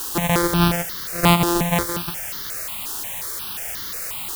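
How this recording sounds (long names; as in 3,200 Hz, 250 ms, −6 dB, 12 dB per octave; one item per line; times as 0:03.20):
a buzz of ramps at a fixed pitch in blocks of 256 samples
tremolo saw down 0.53 Hz, depth 45%
a quantiser's noise floor 6 bits, dither triangular
notches that jump at a steady rate 5.6 Hz 590–2,500 Hz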